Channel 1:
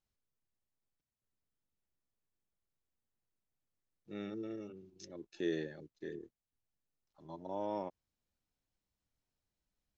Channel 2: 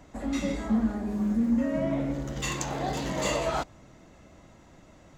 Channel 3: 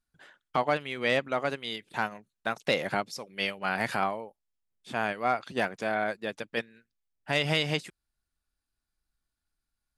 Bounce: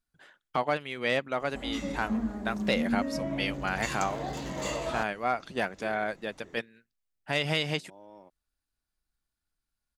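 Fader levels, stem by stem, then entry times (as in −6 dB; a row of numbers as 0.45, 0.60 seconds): −13.0, −5.0, −1.5 decibels; 0.40, 1.40, 0.00 seconds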